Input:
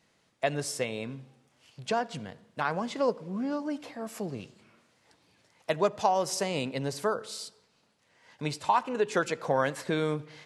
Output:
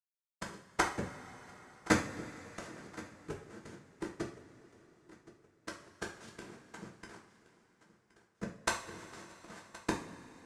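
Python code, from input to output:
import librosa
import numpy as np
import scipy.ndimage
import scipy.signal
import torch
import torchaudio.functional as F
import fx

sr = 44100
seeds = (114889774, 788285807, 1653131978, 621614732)

y = fx.spec_delay(x, sr, highs='early', ms=151)
y = scipy.signal.sosfilt(scipy.signal.butter(4, 140.0, 'highpass', fs=sr, output='sos'), y)
y = fx.env_lowpass(y, sr, base_hz=350.0, full_db=-25.0)
y = fx.dereverb_blind(y, sr, rt60_s=0.57)
y = fx.dynamic_eq(y, sr, hz=190.0, q=6.8, threshold_db=-53.0, ratio=4.0, max_db=6)
y = fx.schmitt(y, sr, flips_db=-33.0)
y = fx.noise_vocoder(y, sr, seeds[0], bands=3)
y = fx.gate_flip(y, sr, shuts_db=-27.0, range_db=-33)
y = fx.step_gate(y, sr, bpm=133, pattern='xx..x..x', floor_db=-12.0, edge_ms=4.5)
y = fx.echo_feedback(y, sr, ms=1071, feedback_pct=42, wet_db=-19)
y = fx.rev_double_slope(y, sr, seeds[1], early_s=0.37, late_s=4.4, knee_db=-21, drr_db=-1.5)
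y = y * librosa.db_to_amplitude(12.0)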